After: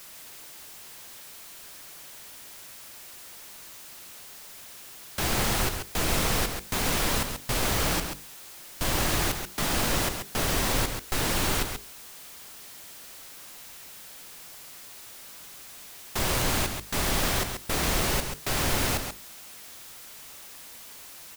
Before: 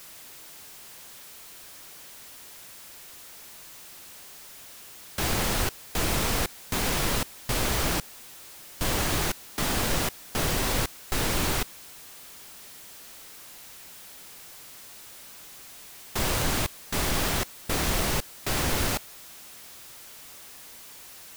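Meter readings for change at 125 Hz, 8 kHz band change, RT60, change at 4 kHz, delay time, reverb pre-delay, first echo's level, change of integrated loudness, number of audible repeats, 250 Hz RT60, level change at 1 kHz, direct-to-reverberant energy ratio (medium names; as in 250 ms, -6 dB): 0.0 dB, +1.0 dB, no reverb, +1.0 dB, 135 ms, no reverb, -7.0 dB, +0.5 dB, 1, no reverb, +1.0 dB, no reverb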